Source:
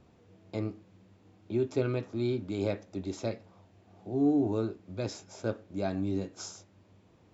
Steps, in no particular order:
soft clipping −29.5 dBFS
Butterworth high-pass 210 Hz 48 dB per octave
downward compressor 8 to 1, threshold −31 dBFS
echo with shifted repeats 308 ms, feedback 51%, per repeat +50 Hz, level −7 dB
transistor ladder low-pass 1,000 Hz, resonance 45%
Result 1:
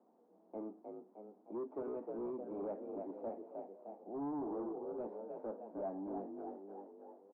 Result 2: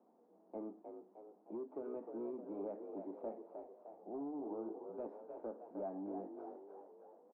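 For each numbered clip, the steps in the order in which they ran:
echo with shifted repeats, then Butterworth high-pass, then soft clipping, then transistor ladder low-pass, then downward compressor
Butterworth high-pass, then downward compressor, then soft clipping, then echo with shifted repeats, then transistor ladder low-pass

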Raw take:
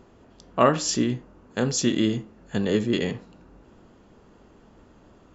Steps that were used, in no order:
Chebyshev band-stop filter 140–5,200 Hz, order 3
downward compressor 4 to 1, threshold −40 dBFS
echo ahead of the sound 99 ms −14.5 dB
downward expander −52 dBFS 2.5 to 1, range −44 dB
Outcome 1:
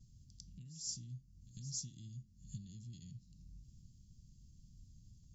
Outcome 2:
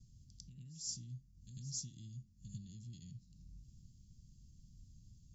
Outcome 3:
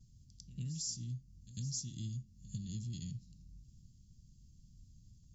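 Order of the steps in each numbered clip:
downward expander, then downward compressor, then Chebyshev band-stop filter, then echo ahead of the sound
echo ahead of the sound, then downward compressor, then downward expander, then Chebyshev band-stop filter
downward expander, then Chebyshev band-stop filter, then downward compressor, then echo ahead of the sound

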